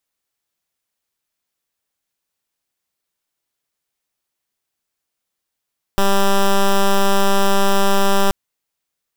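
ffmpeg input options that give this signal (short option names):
-f lavfi -i "aevalsrc='0.224*(2*lt(mod(197*t,1),0.09)-1)':d=2.33:s=44100"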